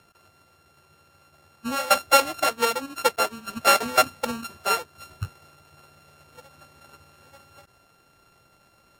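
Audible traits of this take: a buzz of ramps at a fixed pitch in blocks of 32 samples; Vorbis

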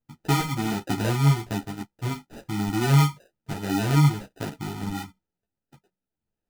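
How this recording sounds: phasing stages 6, 1.4 Hz, lowest notch 490–1100 Hz; aliases and images of a low sample rate 1.1 kHz, jitter 0%; a shimmering, thickened sound

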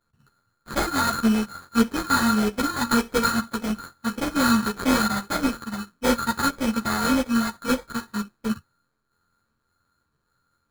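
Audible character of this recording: a buzz of ramps at a fixed pitch in blocks of 32 samples; phasing stages 4, 1.7 Hz, lowest notch 440–1100 Hz; aliases and images of a low sample rate 2.8 kHz, jitter 0%; a shimmering, thickened sound

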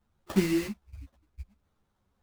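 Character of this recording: aliases and images of a low sample rate 2.4 kHz, jitter 20%; a shimmering, thickened sound

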